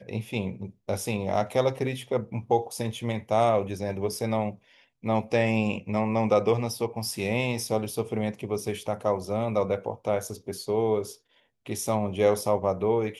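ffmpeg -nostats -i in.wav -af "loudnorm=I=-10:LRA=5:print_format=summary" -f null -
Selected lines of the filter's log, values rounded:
Input Integrated:    -27.6 LUFS
Input True Peak:      -8.4 dBTP
Input LRA:             2.1 LU
Input Threshold:     -37.9 LUFS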